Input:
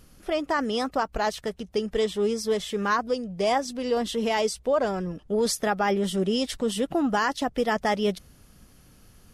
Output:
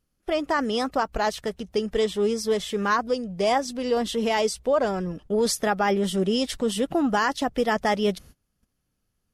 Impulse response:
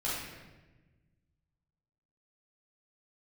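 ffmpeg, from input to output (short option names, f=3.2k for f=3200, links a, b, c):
-af "agate=range=-24dB:threshold=-46dB:ratio=16:detection=peak,volume=1.5dB"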